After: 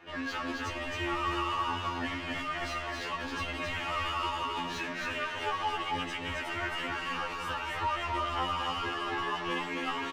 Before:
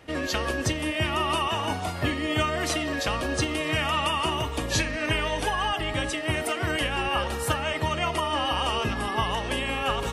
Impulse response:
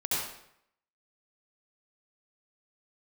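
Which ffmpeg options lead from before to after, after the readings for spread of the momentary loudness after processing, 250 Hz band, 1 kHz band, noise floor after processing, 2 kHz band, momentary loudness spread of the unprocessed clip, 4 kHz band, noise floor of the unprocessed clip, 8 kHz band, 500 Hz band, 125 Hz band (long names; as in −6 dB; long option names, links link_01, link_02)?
4 LU, −8.5 dB, −4.0 dB, −38 dBFS, −5.5 dB, 3 LU, −8.0 dB, −32 dBFS, −14.5 dB, −10.0 dB, −12.5 dB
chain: -filter_complex "[0:a]equalizer=frequency=160:width_type=o:width=0.67:gain=-8,equalizer=frequency=630:width_type=o:width=0.67:gain=-9,equalizer=frequency=10000:width_type=o:width=0.67:gain=-11,asplit=2[link_01][link_02];[link_02]highpass=frequency=720:poles=1,volume=22dB,asoftclip=type=tanh:threshold=-13dB[link_03];[link_01][link_03]amix=inputs=2:normalize=0,lowpass=frequency=1100:poles=1,volume=-6dB,flanger=delay=5.9:depth=6:regen=37:speed=0.42:shape=triangular,asplit=2[link_04][link_05];[link_05]aecho=0:1:268:0.708[link_06];[link_04][link_06]amix=inputs=2:normalize=0,afftfilt=real='re*2*eq(mod(b,4),0)':imag='im*2*eq(mod(b,4),0)':win_size=2048:overlap=0.75,volume=-3.5dB"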